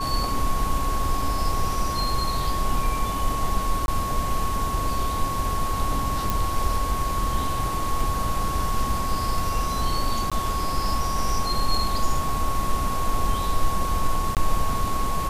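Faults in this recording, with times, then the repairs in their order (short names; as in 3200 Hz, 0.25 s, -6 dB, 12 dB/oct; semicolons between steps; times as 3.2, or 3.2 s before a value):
tone 1100 Hz -27 dBFS
3.86–3.88 gap 21 ms
6.3 pop
10.3–10.32 gap 16 ms
14.35–14.37 gap 18 ms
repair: de-click; notch 1100 Hz, Q 30; interpolate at 3.86, 21 ms; interpolate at 10.3, 16 ms; interpolate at 14.35, 18 ms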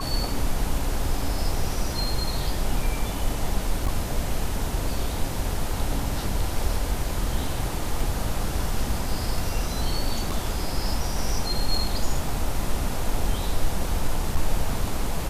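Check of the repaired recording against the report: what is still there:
none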